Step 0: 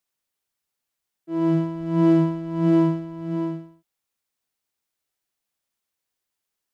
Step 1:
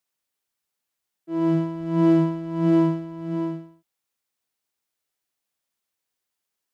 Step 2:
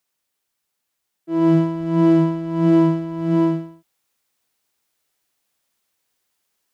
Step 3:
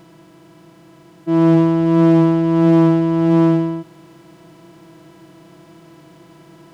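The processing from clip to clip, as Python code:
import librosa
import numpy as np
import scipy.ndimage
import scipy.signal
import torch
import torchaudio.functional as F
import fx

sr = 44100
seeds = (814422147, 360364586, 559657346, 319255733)

y1 = fx.low_shelf(x, sr, hz=78.0, db=-7.0)
y2 = fx.rider(y1, sr, range_db=4, speed_s=0.5)
y2 = y2 * librosa.db_to_amplitude(5.5)
y3 = fx.bin_compress(y2, sr, power=0.4)
y3 = fx.doppler_dist(y3, sr, depth_ms=0.17)
y3 = y3 * librosa.db_to_amplitude(1.5)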